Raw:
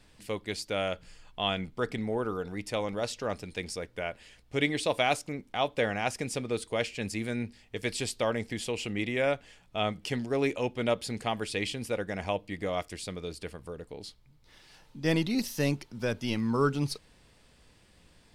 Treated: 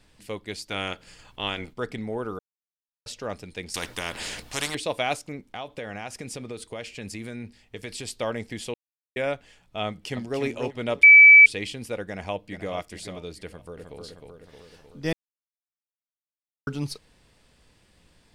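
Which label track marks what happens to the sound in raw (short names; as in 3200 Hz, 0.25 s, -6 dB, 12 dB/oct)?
0.690000	1.720000	spectral limiter ceiling under each frame's peak by 15 dB
2.390000	3.060000	mute
3.740000	4.750000	spectral compressor 4:1
5.480000	8.080000	compressor 5:1, threshold -31 dBFS
8.740000	9.160000	mute
9.870000	10.410000	echo throw 0.29 s, feedback 25%, level -6 dB
11.030000	11.460000	bleep 2300 Hz -7 dBFS
12.040000	12.750000	echo throw 0.43 s, feedback 25%, level -10 dB
13.460000	13.990000	echo throw 0.31 s, feedback 65%, level -4 dB
15.130000	16.670000	mute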